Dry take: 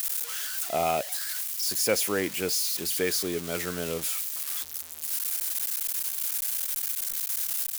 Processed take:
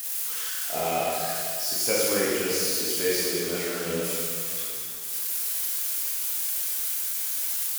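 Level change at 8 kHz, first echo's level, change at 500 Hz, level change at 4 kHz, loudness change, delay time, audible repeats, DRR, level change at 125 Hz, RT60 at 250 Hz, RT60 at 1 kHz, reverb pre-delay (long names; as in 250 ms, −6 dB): +2.0 dB, no echo audible, +3.0 dB, +2.0 dB, +2.0 dB, no echo audible, no echo audible, −7.0 dB, +1.0 dB, 2.4 s, 2.4 s, 6 ms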